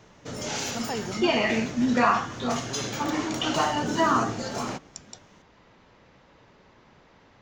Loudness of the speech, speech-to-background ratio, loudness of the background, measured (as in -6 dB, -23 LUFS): -26.5 LUFS, 5.5 dB, -32.0 LUFS